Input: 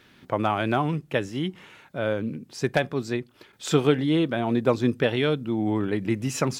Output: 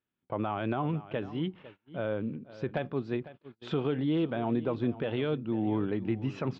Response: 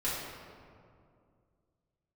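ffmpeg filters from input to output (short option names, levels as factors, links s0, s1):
-filter_complex "[0:a]alimiter=limit=0.178:level=0:latency=1:release=52,asplit=2[s0][s1];[s1]aecho=0:1:502:0.158[s2];[s0][s2]amix=inputs=2:normalize=0,agate=range=0.0398:threshold=0.00794:ratio=16:detection=peak,lowpass=f=3200:w=0.5412,lowpass=f=3200:w=1.3066,equalizer=f=2000:w=1.8:g=-6,volume=0.596"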